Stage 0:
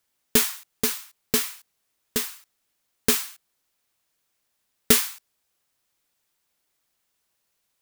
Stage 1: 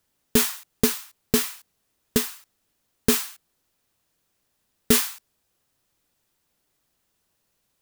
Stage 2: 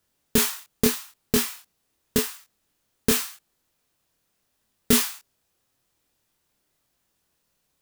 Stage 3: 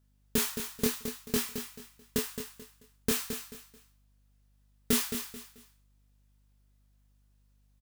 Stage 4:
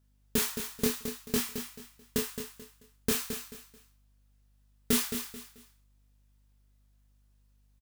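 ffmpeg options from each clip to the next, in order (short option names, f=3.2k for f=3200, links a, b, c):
-af "lowshelf=f=500:g=9.5,bandreject=f=2.2k:w=26,alimiter=level_in=4dB:limit=-1dB:release=50:level=0:latency=1,volume=-3dB"
-af "flanger=delay=22.5:depth=5.8:speed=0.85,volume=3dB"
-af "aeval=exprs='val(0)+0.00112*(sin(2*PI*50*n/s)+sin(2*PI*2*50*n/s)/2+sin(2*PI*3*50*n/s)/3+sin(2*PI*4*50*n/s)/4+sin(2*PI*5*50*n/s)/5)':c=same,aecho=1:1:218|436|654:0.376|0.109|0.0316,volume=-8dB"
-filter_complex "[0:a]asplit=2[a][b];[b]adelay=37,volume=-13dB[c];[a][c]amix=inputs=2:normalize=0"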